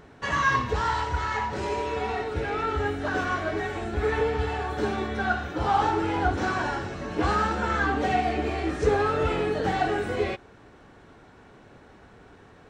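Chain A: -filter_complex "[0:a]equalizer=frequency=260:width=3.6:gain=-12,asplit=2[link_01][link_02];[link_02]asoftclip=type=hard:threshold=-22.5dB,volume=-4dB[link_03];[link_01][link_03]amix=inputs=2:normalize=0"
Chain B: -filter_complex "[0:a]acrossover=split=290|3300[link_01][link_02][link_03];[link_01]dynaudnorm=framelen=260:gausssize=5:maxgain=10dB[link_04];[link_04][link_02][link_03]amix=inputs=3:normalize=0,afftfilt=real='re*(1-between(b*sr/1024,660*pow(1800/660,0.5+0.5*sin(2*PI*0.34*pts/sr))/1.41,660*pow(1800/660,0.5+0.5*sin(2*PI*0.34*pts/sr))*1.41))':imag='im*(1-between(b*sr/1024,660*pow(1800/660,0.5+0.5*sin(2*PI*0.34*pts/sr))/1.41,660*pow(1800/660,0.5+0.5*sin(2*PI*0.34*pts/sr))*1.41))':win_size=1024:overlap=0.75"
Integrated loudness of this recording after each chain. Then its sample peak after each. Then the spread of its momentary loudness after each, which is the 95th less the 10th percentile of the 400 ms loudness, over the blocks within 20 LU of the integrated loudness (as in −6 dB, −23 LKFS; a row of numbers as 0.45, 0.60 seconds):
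−23.5, −23.5 LKFS; −10.0, −6.0 dBFS; 5, 6 LU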